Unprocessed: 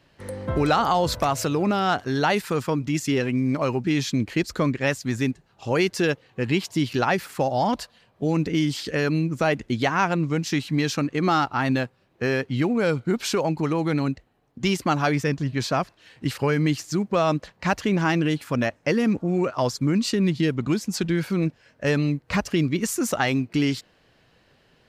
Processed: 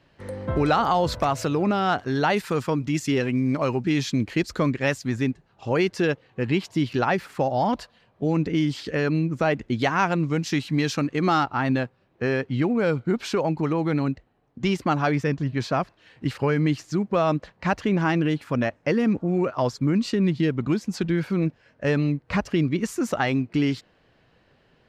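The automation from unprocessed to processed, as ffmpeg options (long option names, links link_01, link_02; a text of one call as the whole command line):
ffmpeg -i in.wav -af "asetnsamples=nb_out_samples=441:pad=0,asendcmd='2.37 lowpass f 6800;5.07 lowpass f 2800;9.79 lowpass f 7100;11.43 lowpass f 2600',lowpass=frequency=3700:poles=1" out.wav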